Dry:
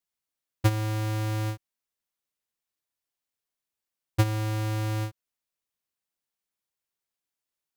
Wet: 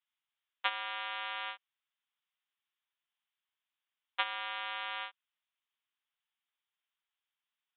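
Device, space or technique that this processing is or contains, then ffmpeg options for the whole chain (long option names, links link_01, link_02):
musical greeting card: -af "aresample=8000,aresample=44100,highpass=frequency=890:width=0.5412,highpass=frequency=890:width=1.3066,equalizer=frequency=3200:width_type=o:width=0.47:gain=4.5,volume=2dB"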